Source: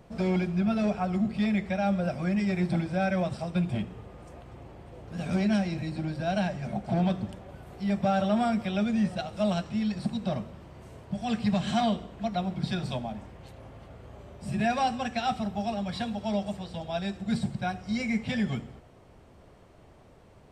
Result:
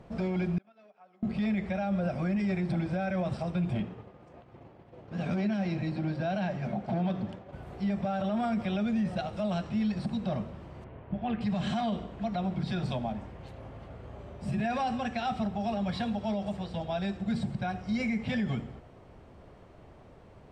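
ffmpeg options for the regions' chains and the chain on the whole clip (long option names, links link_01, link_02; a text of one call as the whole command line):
ffmpeg -i in.wav -filter_complex "[0:a]asettb=1/sr,asplit=3[link_01][link_02][link_03];[link_01]atrim=end=0.584[link_04];[link_02]atrim=start=0.58:end=1.23,asetpts=PTS-STARTPTS,afade=type=in:duration=0.004:curve=qsin,afade=type=out:start_time=0.646:duration=0.004:curve=qsin,agate=range=-25dB:threshold=-23dB:ratio=16:release=100:detection=peak,acompressor=threshold=-48dB:ratio=12:attack=3.2:release=140:knee=1:detection=peak,highpass=480,lowpass=5800[link_05];[link_03]atrim=start=1.226[link_06];[link_04][link_05]acrossfade=duration=0.004:curve1=hsin:curve2=qsin[link_07];[link_07][link_06]acrossfade=duration=0.004:curve1=qsin:curve2=hsin,asettb=1/sr,asplit=3[link_08][link_09][link_10];[link_08]atrim=end=3.804[link_11];[link_09]atrim=start=3.8:end=7.53,asetpts=PTS-STARTPTS,afade=type=in:duration=0.004:curve=qsin,afade=type=out:start_time=3.726:duration=0.004:curve=qsin,highpass=110,lowpass=6400,agate=range=-33dB:threshold=-43dB:ratio=3:release=100:detection=peak[link_12];[link_10]atrim=start=7.526[link_13];[link_11][link_12]acrossfade=duration=0.004:curve1=hsin:curve2=qsin[link_14];[link_14][link_13]acrossfade=duration=0.004:curve1=qsin:curve2=hsin,asettb=1/sr,asplit=3[link_15][link_16][link_17];[link_15]atrim=end=10.844[link_18];[link_16]atrim=start=10.84:end=11.41,asetpts=PTS-STARTPTS,afade=type=in:duration=0.004:curve=qsin,afade=type=out:start_time=0.566:duration=0.004:curve=qsin,lowpass=frequency=2900:width=0.5412,lowpass=frequency=2900:width=1.3066,tremolo=f=140:d=0.4[link_19];[link_17]atrim=start=11.406[link_20];[link_18][link_19]acrossfade=duration=0.004:curve1=hsin:curve2=qsin[link_21];[link_21][link_20]acrossfade=duration=0.004:curve1=qsin:curve2=hsin,aemphasis=mode=reproduction:type=50kf,alimiter=level_in=1dB:limit=-24dB:level=0:latency=1:release=49,volume=-1dB,volume=2dB" out.wav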